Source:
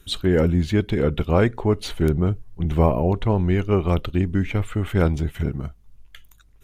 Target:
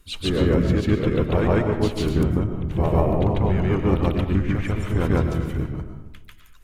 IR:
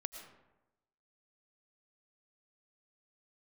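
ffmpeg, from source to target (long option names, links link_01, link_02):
-filter_complex "[0:a]asplit=3[link_01][link_02][link_03];[link_02]asetrate=33038,aresample=44100,atempo=1.33484,volume=-3dB[link_04];[link_03]asetrate=52444,aresample=44100,atempo=0.840896,volume=-13dB[link_05];[link_01][link_04][link_05]amix=inputs=3:normalize=0,asplit=2[link_06][link_07];[1:a]atrim=start_sample=2205,adelay=144[link_08];[link_07][link_08]afir=irnorm=-1:irlink=0,volume=5.5dB[link_09];[link_06][link_09]amix=inputs=2:normalize=0,volume=-7dB"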